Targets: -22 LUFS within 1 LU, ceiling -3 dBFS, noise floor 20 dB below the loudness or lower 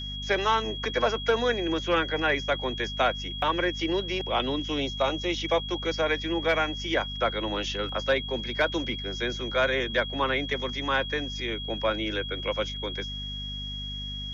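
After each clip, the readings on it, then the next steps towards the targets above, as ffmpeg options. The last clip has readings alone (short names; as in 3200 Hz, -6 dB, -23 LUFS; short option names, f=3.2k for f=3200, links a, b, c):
hum 50 Hz; harmonics up to 250 Hz; hum level -36 dBFS; steady tone 3300 Hz; tone level -35 dBFS; loudness -27.5 LUFS; peak -13.0 dBFS; loudness target -22.0 LUFS
-> -af "bandreject=f=50:t=h:w=4,bandreject=f=100:t=h:w=4,bandreject=f=150:t=h:w=4,bandreject=f=200:t=h:w=4,bandreject=f=250:t=h:w=4"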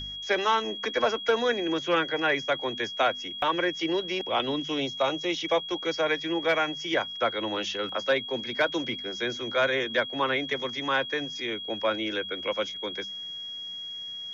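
hum none; steady tone 3300 Hz; tone level -35 dBFS
-> -af "bandreject=f=3.3k:w=30"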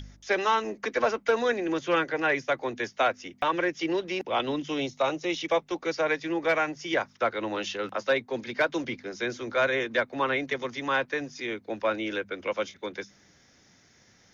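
steady tone none; loudness -28.5 LUFS; peak -14.0 dBFS; loudness target -22.0 LUFS
-> -af "volume=6.5dB"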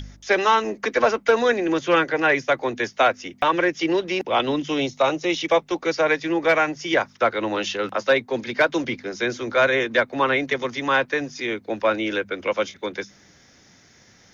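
loudness -22.0 LUFS; peak -7.5 dBFS; noise floor -54 dBFS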